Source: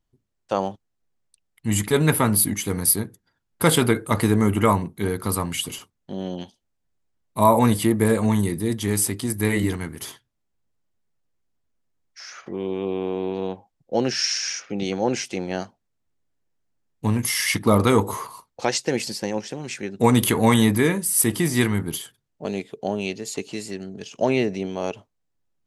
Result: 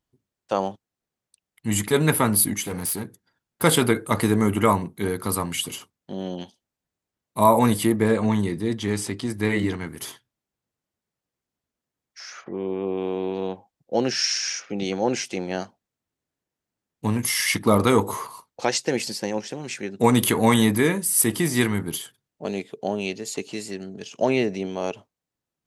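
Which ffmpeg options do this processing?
ffmpeg -i in.wav -filter_complex "[0:a]asettb=1/sr,asplit=3[link_01][link_02][link_03];[link_01]atrim=end=2.644[link_04];[link_02]atrim=start=2.64:end=3.64,asetpts=PTS-STARTPTS,afade=type=in:duration=0.004:curve=qsin,afade=type=out:start_time=0.996:duration=0.004:curve=qsin,asoftclip=type=hard:threshold=-24dB[link_05];[link_03]atrim=start=3.636[link_06];[link_04][link_05]acrossfade=duration=0.004:curve1=hsin:curve2=qsin[link_07];[link_07][link_06]acrossfade=duration=0.004:curve1=qsin:curve2=hsin,asettb=1/sr,asplit=3[link_08][link_09][link_10];[link_08]atrim=end=7.964[link_11];[link_09]atrim=start=7.96:end=9.87,asetpts=PTS-STARTPTS,afade=type=in:duration=0.004:curve=qsin,afade=type=out:start_time=1.906:duration=0.004:curve=qsin,lowpass=5500[link_12];[link_10]atrim=start=9.866[link_13];[link_11][link_12]acrossfade=duration=0.004:curve1=hsin:curve2=qsin[link_14];[link_14][link_13]acrossfade=duration=0.004:curve1=qsin:curve2=hsin,asplit=3[link_15][link_16][link_17];[link_15]afade=type=out:start_time=12.43:duration=0.02[link_18];[link_16]lowpass=2100,afade=type=in:start_time=12.43:duration=0.02,afade=type=out:start_time=12.96:duration=0.02[link_19];[link_17]afade=type=in:start_time=12.96:duration=0.02[link_20];[link_18][link_19][link_20]amix=inputs=3:normalize=0,highpass=frequency=120:poles=1" out.wav

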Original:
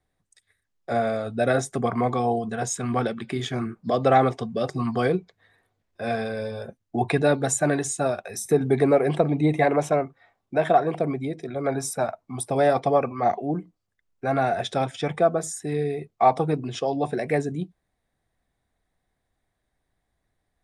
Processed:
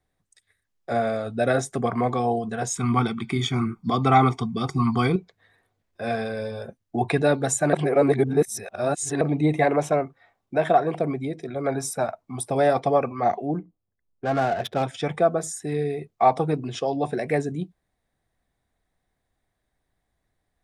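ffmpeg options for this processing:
ffmpeg -i in.wav -filter_complex "[0:a]asettb=1/sr,asplit=3[link_01][link_02][link_03];[link_01]atrim=end=2.764[link_04];[link_02]atrim=start=2.76:end=5.16,asetpts=PTS-STARTPTS,afade=type=in:duration=0.004:curve=qsin,afade=type=out:start_time=2.396:duration=0.004:curve=qsin,aecho=1:1:0.9:1,atrim=end_sample=105840[link_05];[link_03]atrim=start=5.156[link_06];[link_04][link_05]acrossfade=duration=0.004:curve1=hsin:curve2=qsin[link_07];[link_07][link_06]acrossfade=duration=0.004:curve1=qsin:curve2=hsin,asettb=1/sr,asplit=3[link_08][link_09][link_10];[link_08]atrim=end=13.594[link_11];[link_09]atrim=start=13.59:end=14.83,asetpts=PTS-STARTPTS,afade=type=in:duration=0.004:curve=qsin,afade=type=out:start_time=1.236:duration=0.004:curve=qsin,adynamicsmooth=sensitivity=4.5:basefreq=920[link_12];[link_10]atrim=start=14.826[link_13];[link_11][link_12]acrossfade=duration=0.004:curve1=hsin:curve2=qsin[link_14];[link_14][link_13]acrossfade=duration=0.004:curve1=qsin:curve2=hsin,asplit=3[link_15][link_16][link_17];[link_15]atrim=end=7.732[link_18];[link_16]atrim=start=7.728:end=9.212,asetpts=PTS-STARTPTS,areverse[link_19];[link_17]atrim=start=9.208[link_20];[link_18][link_19]acrossfade=duration=0.004:curve1=hsin:curve2=hsin[link_21];[link_21][link_20]acrossfade=duration=0.004:curve1=hsin:curve2=hsin" out.wav

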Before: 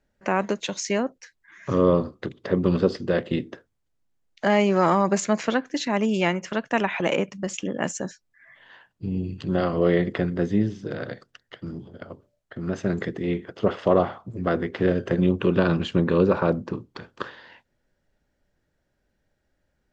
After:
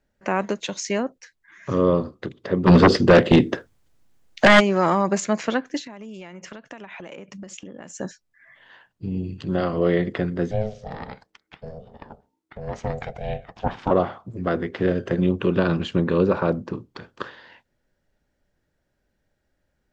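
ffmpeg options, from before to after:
ffmpeg -i in.wav -filter_complex "[0:a]asplit=3[link_01][link_02][link_03];[link_01]afade=type=out:start_time=2.66:duration=0.02[link_04];[link_02]aeval=exprs='0.473*sin(PI/2*3.16*val(0)/0.473)':channel_layout=same,afade=type=in:start_time=2.66:duration=0.02,afade=type=out:start_time=4.59:duration=0.02[link_05];[link_03]afade=type=in:start_time=4.59:duration=0.02[link_06];[link_04][link_05][link_06]amix=inputs=3:normalize=0,asettb=1/sr,asplit=3[link_07][link_08][link_09];[link_07]atrim=end=5.794[link_10];[link_08]atrim=start=5.79:end=7.99,asetpts=PTS-STARTPTS,afade=type=in:duration=0.004:curve=qsin,afade=type=out:start_time=2.196:duration=0.004:curve=qsin,acompressor=threshold=-34dB:ratio=20:attack=3.2:release=140:knee=1:detection=peak[link_11];[link_09]atrim=start=7.986[link_12];[link_10][link_11]acrossfade=duration=0.004:curve1=hsin:curve2=qsin[link_13];[link_13][link_12]acrossfade=duration=0.004:curve1=qsin:curve2=hsin,asettb=1/sr,asplit=3[link_14][link_15][link_16];[link_14]atrim=end=10.514[link_17];[link_15]atrim=start=10.51:end=13.91,asetpts=PTS-STARTPTS,afade=type=in:duration=0.004:curve=qsin,afade=type=out:start_time=3.396:duration=0.004:curve=qsin,aeval=exprs='val(0)*sin(2*PI*320*n/s)':channel_layout=same[link_18];[link_16]atrim=start=13.906[link_19];[link_17][link_18]acrossfade=duration=0.004:curve1=hsin:curve2=qsin[link_20];[link_20][link_19]acrossfade=duration=0.004:curve1=qsin:curve2=hsin" out.wav

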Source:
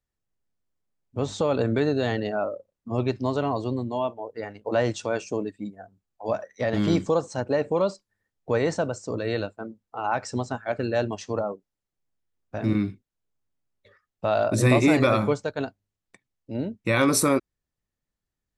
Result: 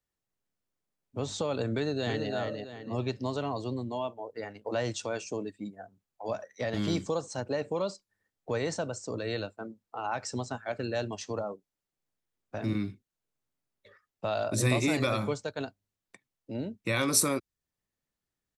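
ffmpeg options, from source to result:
ffmpeg -i in.wav -filter_complex "[0:a]asplit=2[link_01][link_02];[link_02]afade=type=in:start_time=1.73:duration=0.01,afade=type=out:start_time=2.31:duration=0.01,aecho=0:1:330|660|990|1320:0.530884|0.159265|0.0477796|0.0143339[link_03];[link_01][link_03]amix=inputs=2:normalize=0,lowshelf=frequency=100:gain=-9.5,acrossover=split=130|3000[link_04][link_05][link_06];[link_05]acompressor=threshold=-42dB:ratio=1.5[link_07];[link_04][link_07][link_06]amix=inputs=3:normalize=0" out.wav

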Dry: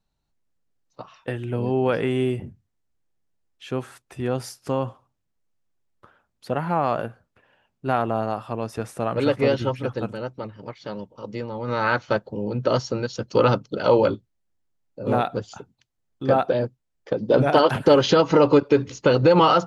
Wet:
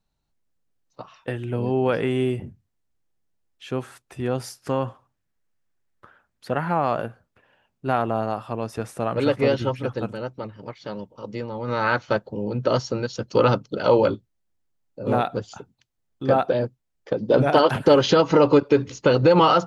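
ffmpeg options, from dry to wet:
ffmpeg -i in.wav -filter_complex "[0:a]asettb=1/sr,asplit=3[link_01][link_02][link_03];[link_01]atrim=end=4.594[link_04];[link_02]atrim=start=4.59:end=6.73,asetpts=PTS-STARTPTS,afade=type=in:duration=0.004:curve=qsin,afade=type=out:start_time=2.136:duration=0.004:curve=qsin,equalizer=frequency=1700:width_type=o:width=0.73:gain=6[link_05];[link_03]atrim=start=6.726[link_06];[link_04][link_05]acrossfade=duration=0.004:curve1=hsin:curve2=qsin[link_07];[link_07][link_06]acrossfade=duration=0.004:curve1=qsin:curve2=hsin" out.wav

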